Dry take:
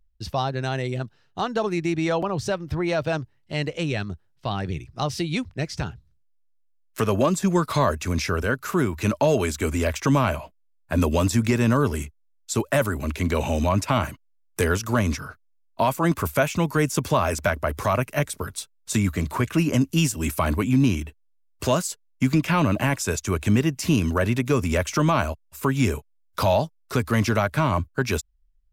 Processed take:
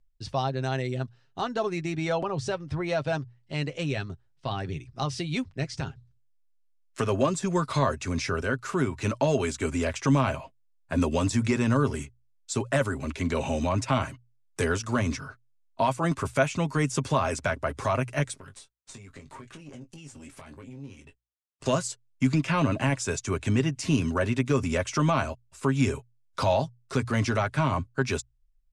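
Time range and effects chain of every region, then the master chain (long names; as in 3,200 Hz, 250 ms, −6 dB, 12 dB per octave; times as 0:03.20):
0:18.38–0:21.66: downward compressor 12 to 1, threshold −33 dBFS + tube saturation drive 32 dB, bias 0.8 + double-tracking delay 21 ms −8.5 dB
whole clip: Butterworth low-pass 9,500 Hz 36 dB per octave; mains-hum notches 60/120 Hz; comb filter 7.5 ms, depth 42%; level −4.5 dB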